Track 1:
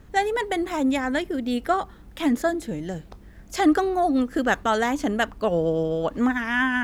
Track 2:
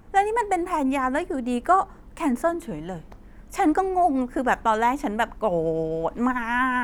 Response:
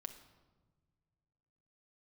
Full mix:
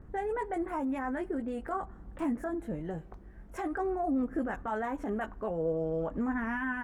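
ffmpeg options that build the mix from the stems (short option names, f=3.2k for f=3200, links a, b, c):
-filter_complex "[0:a]lowpass=f=1.7k:w=0.5412,lowpass=f=1.7k:w=1.3066,alimiter=limit=-21dB:level=0:latency=1:release=34,flanger=delay=0.1:depth=2.6:regen=65:speed=0.47:shape=sinusoidal,volume=-2.5dB,asplit=2[a][b];[b]volume=-10.5dB[c];[1:a]acompressor=threshold=-28dB:ratio=2.5,adelay=19,volume=-14.5dB[d];[2:a]atrim=start_sample=2205[e];[c][e]afir=irnorm=-1:irlink=0[f];[a][d][f]amix=inputs=3:normalize=0"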